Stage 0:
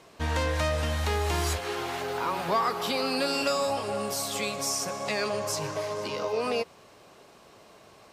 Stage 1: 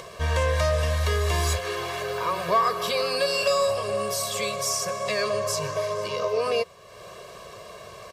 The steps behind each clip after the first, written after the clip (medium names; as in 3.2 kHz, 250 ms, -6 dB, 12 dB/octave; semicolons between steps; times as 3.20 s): comb 1.8 ms, depth 96%; upward compressor, threshold -33 dBFS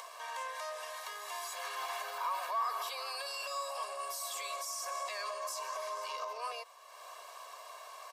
treble shelf 7.1 kHz +9.5 dB; peak limiter -22.5 dBFS, peak gain reduction 11 dB; ladder high-pass 750 Hz, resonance 55%; trim +1 dB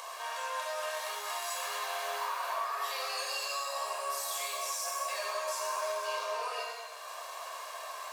compression, threshold -39 dBFS, peak gain reduction 9 dB; pitch-shifted reverb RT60 1.2 s, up +7 st, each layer -8 dB, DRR -4 dB; trim +1.5 dB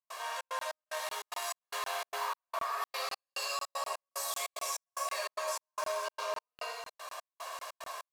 trance gate ".xxx.xx." 148 bpm -60 dB; crackling interface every 0.25 s, samples 1024, zero, from 0.59 s